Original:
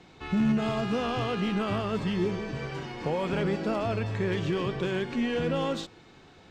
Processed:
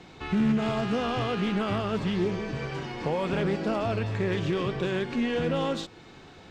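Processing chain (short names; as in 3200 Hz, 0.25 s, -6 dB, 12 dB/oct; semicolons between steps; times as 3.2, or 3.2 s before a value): in parallel at -3 dB: compressor, threshold -42 dBFS, peak gain reduction 18.5 dB; on the sum: Doppler distortion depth 0.17 ms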